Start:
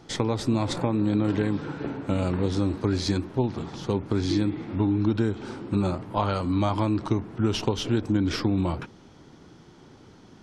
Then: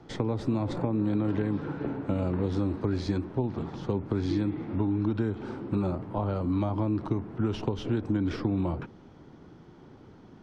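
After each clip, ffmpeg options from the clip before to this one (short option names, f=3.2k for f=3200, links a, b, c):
-filter_complex "[0:a]lowpass=f=1.4k:p=1,acrossover=split=250|670[a][b][c];[a]acompressor=threshold=-28dB:ratio=4[d];[b]acompressor=threshold=-30dB:ratio=4[e];[c]acompressor=threshold=-40dB:ratio=4[f];[d][e][f]amix=inputs=3:normalize=0"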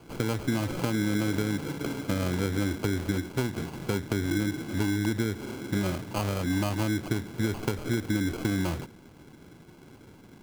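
-af "acrusher=samples=24:mix=1:aa=0.000001"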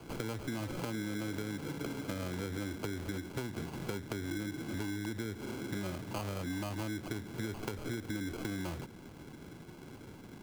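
-filter_complex "[0:a]acrossover=split=290[a][b];[a]alimiter=level_in=2.5dB:limit=-24dB:level=0:latency=1,volume=-2.5dB[c];[c][b]amix=inputs=2:normalize=0,acompressor=threshold=-39dB:ratio=3,volume=1dB"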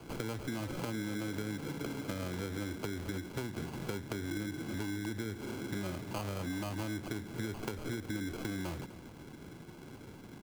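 -af "aecho=1:1:251:0.158"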